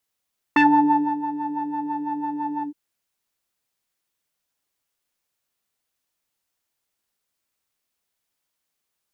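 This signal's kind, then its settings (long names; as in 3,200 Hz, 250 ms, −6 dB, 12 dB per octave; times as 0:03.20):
subtractive patch with filter wobble D4, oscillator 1 triangle, oscillator 2 saw, interval +19 semitones, oscillator 2 level −2 dB, sub −28.5 dB, noise −22 dB, filter lowpass, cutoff 350 Hz, Q 3.2, filter envelope 2.5 octaves, filter decay 0.18 s, filter sustain 40%, attack 4.3 ms, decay 0.62 s, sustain −14 dB, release 0.10 s, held 2.07 s, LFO 6 Hz, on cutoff 0.6 octaves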